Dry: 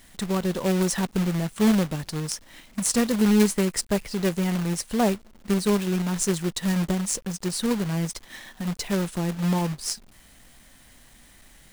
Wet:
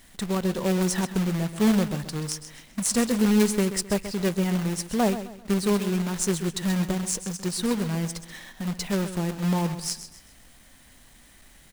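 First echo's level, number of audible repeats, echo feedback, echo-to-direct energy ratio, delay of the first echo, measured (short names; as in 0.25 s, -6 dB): -12.0 dB, 3, 35%, -11.5 dB, 0.131 s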